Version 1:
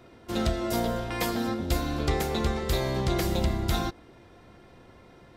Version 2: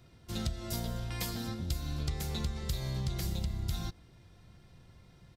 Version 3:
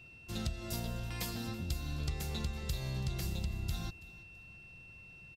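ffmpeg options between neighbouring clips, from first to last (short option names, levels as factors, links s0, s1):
-af "firequalizer=gain_entry='entry(160,0);entry(250,-12);entry(420,-14);entry(4400,-2)':delay=0.05:min_phase=1,acompressor=threshold=0.0316:ratio=6"
-af "aeval=exprs='val(0)+0.00282*sin(2*PI*2700*n/s)':c=same,aecho=1:1:330|660:0.1|0.031,volume=0.75"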